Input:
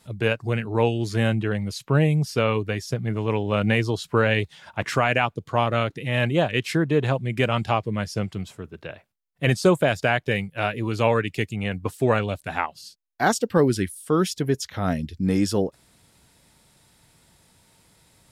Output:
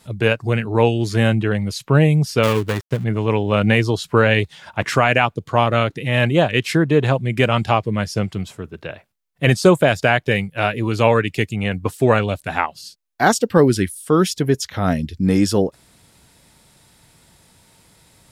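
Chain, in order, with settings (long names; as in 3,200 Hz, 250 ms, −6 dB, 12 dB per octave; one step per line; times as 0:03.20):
0:02.43–0:03.04: gap after every zero crossing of 0.23 ms
level +5.5 dB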